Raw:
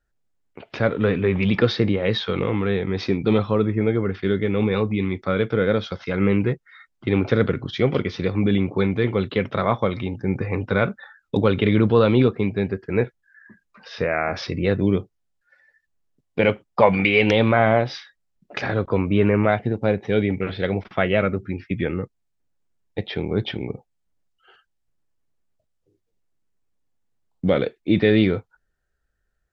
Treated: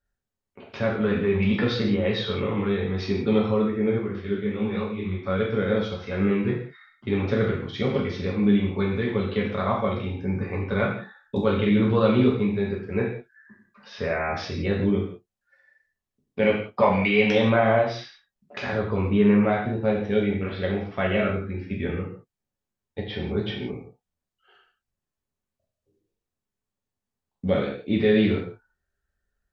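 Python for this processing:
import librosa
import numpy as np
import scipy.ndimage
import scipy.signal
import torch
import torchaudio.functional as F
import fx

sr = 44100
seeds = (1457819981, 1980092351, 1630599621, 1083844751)

y = fx.rev_gated(x, sr, seeds[0], gate_ms=210, shape='falling', drr_db=-3.0)
y = fx.detune_double(y, sr, cents=59, at=(3.98, 5.24), fade=0.02)
y = y * 10.0 ** (-8.0 / 20.0)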